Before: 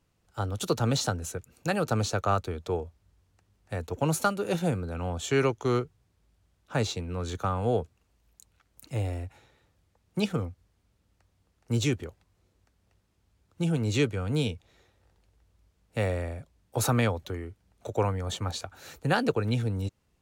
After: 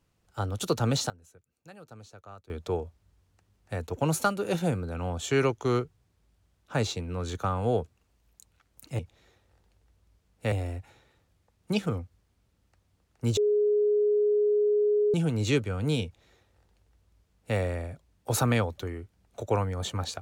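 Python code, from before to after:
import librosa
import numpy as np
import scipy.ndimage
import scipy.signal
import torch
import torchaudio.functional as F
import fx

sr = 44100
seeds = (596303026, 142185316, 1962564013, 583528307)

y = fx.edit(x, sr, fx.fade_down_up(start_s=0.94, length_s=1.72, db=-21.5, fade_s=0.16, curve='log'),
    fx.bleep(start_s=11.84, length_s=1.77, hz=417.0, db=-20.5),
    fx.duplicate(start_s=14.51, length_s=1.53, to_s=8.99), tone=tone)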